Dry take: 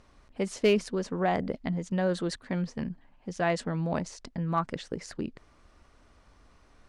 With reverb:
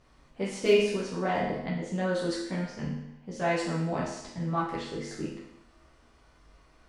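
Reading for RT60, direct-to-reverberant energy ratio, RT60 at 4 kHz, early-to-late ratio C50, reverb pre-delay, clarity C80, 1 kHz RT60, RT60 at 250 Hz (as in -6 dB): 0.80 s, -7.5 dB, 0.80 s, 2.0 dB, 10 ms, 5.5 dB, 0.80 s, 0.80 s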